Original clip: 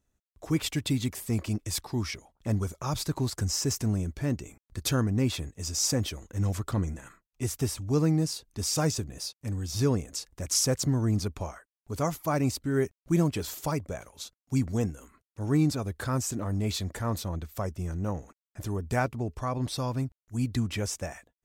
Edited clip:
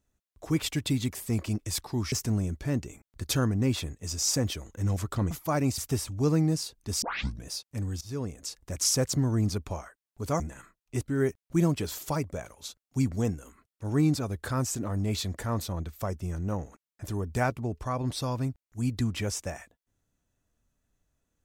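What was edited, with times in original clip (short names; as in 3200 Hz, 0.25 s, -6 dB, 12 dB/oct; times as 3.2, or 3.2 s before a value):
2.12–3.68 cut
6.87–7.48 swap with 12.1–12.57
8.72 tape start 0.42 s
9.71–10.33 fade in, from -17.5 dB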